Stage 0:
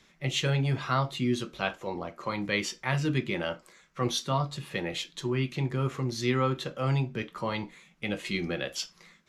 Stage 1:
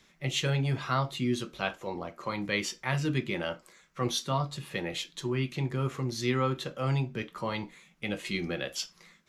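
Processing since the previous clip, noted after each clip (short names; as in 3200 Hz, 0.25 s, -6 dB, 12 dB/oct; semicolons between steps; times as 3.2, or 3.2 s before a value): high shelf 9200 Hz +5 dB; gain -1.5 dB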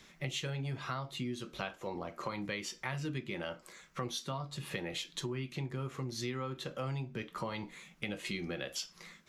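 compressor 6:1, threshold -40 dBFS, peak gain reduction 16 dB; gain +4 dB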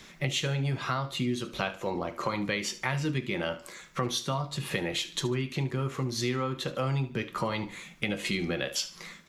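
feedback echo 73 ms, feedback 35%, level -15.5 dB; gain +8 dB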